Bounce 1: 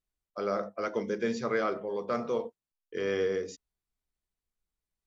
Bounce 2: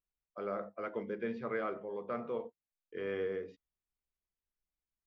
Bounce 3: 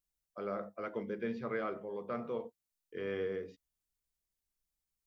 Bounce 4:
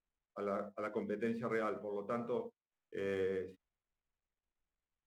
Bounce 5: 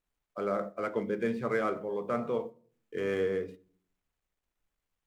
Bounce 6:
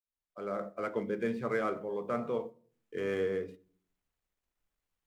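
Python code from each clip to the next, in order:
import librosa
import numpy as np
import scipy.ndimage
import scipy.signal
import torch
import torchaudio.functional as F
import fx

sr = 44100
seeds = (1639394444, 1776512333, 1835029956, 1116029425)

y1 = scipy.signal.sosfilt(scipy.signal.butter(4, 3000.0, 'lowpass', fs=sr, output='sos'), x)
y1 = y1 * librosa.db_to_amplitude(-7.0)
y2 = fx.bass_treble(y1, sr, bass_db=4, treble_db=8)
y2 = y2 * librosa.db_to_amplitude(-1.0)
y3 = scipy.signal.medfilt(y2, 9)
y4 = fx.room_shoebox(y3, sr, seeds[0], volume_m3=510.0, walls='furnished', distance_m=0.32)
y4 = y4 * librosa.db_to_amplitude(7.0)
y5 = fx.fade_in_head(y4, sr, length_s=0.74)
y5 = y5 * librosa.db_to_amplitude(-2.0)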